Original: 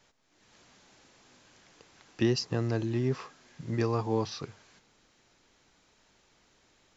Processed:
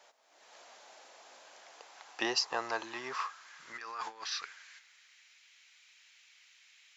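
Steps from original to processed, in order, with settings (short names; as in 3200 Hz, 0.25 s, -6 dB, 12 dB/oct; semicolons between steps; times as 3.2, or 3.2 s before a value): 3.71–4.23 negative-ratio compressor -33 dBFS, ratio -0.5; high-pass sweep 650 Hz -> 2300 Hz, 1.58–5.4; gain +3 dB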